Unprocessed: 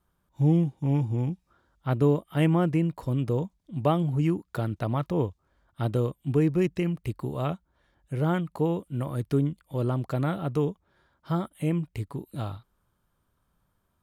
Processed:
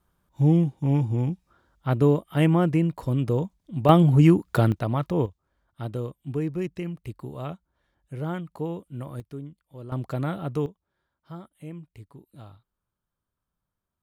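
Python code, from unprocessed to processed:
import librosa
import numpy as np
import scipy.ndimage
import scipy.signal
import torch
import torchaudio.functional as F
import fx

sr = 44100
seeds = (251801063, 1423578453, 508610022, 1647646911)

y = fx.gain(x, sr, db=fx.steps((0.0, 2.5), (3.89, 9.0), (4.72, 2.0), (5.26, -5.0), (9.2, -13.0), (9.92, -1.0), (10.66, -12.5)))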